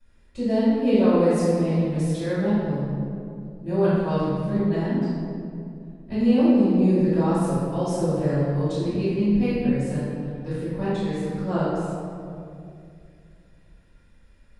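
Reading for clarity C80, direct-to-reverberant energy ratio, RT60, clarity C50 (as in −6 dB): −1.5 dB, −17.5 dB, 2.5 s, −4.5 dB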